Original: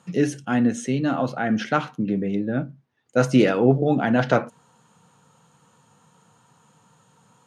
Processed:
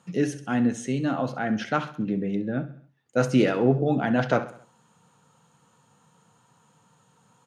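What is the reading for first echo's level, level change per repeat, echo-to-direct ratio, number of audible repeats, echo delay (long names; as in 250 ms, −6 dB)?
−15.5 dB, −6.0 dB, −14.5 dB, 4, 66 ms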